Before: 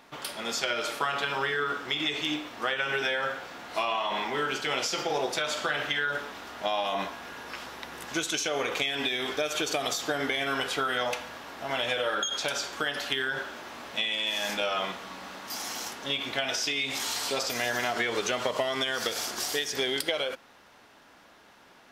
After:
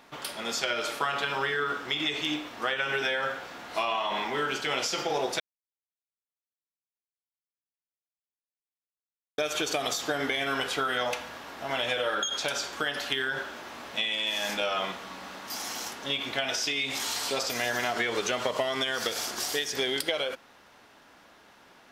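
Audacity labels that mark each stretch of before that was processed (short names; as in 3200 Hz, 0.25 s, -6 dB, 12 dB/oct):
5.400000	9.380000	mute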